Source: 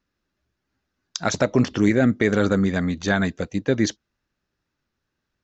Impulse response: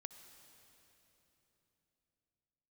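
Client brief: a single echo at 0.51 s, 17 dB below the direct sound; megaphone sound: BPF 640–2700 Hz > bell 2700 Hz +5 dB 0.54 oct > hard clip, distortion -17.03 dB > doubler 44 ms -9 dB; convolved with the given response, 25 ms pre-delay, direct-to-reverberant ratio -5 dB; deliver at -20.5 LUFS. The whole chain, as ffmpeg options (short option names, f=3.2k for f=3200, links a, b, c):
-filter_complex "[0:a]aecho=1:1:510:0.141,asplit=2[a][b];[1:a]atrim=start_sample=2205,adelay=25[c];[b][c]afir=irnorm=-1:irlink=0,volume=10.5dB[d];[a][d]amix=inputs=2:normalize=0,highpass=640,lowpass=2.7k,equalizer=f=2.7k:t=o:w=0.54:g=5,asoftclip=type=hard:threshold=-12dB,asplit=2[e][f];[f]adelay=44,volume=-9dB[g];[e][g]amix=inputs=2:normalize=0,volume=2dB"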